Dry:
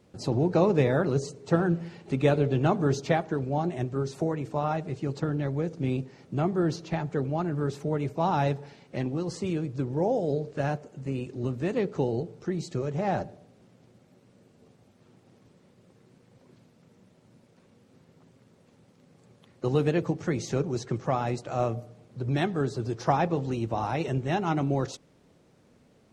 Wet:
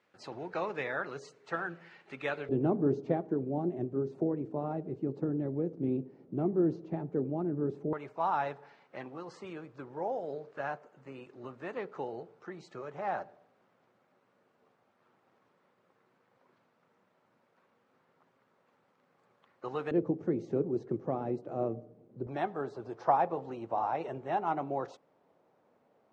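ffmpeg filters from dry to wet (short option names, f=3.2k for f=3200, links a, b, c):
-af "asetnsamples=n=441:p=0,asendcmd='2.49 bandpass f 320;7.93 bandpass f 1200;19.91 bandpass f 340;22.27 bandpass f 820',bandpass=f=1.7k:t=q:w=1.4:csg=0"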